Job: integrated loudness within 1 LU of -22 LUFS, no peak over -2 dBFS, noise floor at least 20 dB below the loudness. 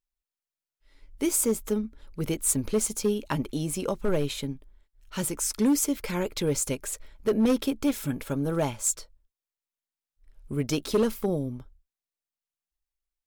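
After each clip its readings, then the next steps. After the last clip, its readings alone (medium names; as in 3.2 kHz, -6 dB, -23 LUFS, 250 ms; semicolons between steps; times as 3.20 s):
clipped samples 0.7%; clipping level -17.5 dBFS; loudness -28.0 LUFS; peak level -17.5 dBFS; loudness target -22.0 LUFS
-> clip repair -17.5 dBFS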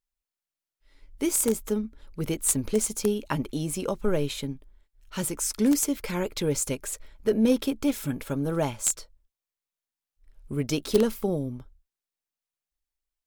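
clipped samples 0.0%; loudness -27.5 LUFS; peak level -8.5 dBFS; loudness target -22.0 LUFS
-> trim +5.5 dB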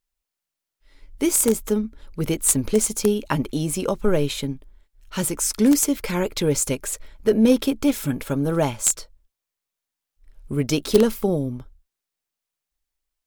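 loudness -22.0 LUFS; peak level -3.0 dBFS; noise floor -86 dBFS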